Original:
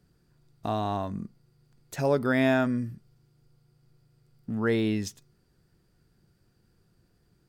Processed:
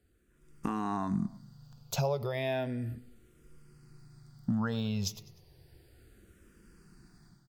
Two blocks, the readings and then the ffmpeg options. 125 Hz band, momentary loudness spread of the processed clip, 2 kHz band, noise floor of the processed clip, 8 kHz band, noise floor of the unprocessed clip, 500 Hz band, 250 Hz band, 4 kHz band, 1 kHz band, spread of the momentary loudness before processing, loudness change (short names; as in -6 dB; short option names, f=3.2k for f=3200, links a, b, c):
-1.5 dB, 9 LU, -10.5 dB, -66 dBFS, +2.0 dB, -68 dBFS, -7.5 dB, -6.0 dB, -1.0 dB, -5.0 dB, 16 LU, -6.0 dB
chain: -filter_complex "[0:a]asplit=2[a][b];[b]alimiter=limit=-24dB:level=0:latency=1,volume=-1dB[c];[a][c]amix=inputs=2:normalize=0,dynaudnorm=f=290:g=3:m=13dB,equalizer=f=430:t=o:w=2:g=-2,aecho=1:1:101|202|303:0.0708|0.0347|0.017,acompressor=threshold=-19dB:ratio=6,asplit=2[d][e];[e]afreqshift=-0.33[f];[d][f]amix=inputs=2:normalize=1,volume=-6.5dB"